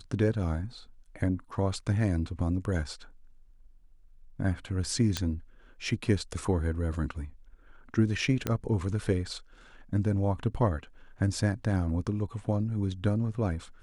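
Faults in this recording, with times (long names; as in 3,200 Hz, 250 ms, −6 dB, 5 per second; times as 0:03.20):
0:05.17: click −14 dBFS
0:08.47: click −14 dBFS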